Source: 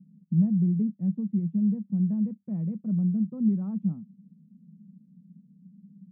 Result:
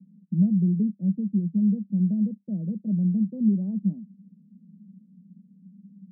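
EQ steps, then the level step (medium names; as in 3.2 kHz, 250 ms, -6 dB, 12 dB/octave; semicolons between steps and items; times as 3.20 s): Chebyshev band-pass 180–610 Hz, order 3; +3.0 dB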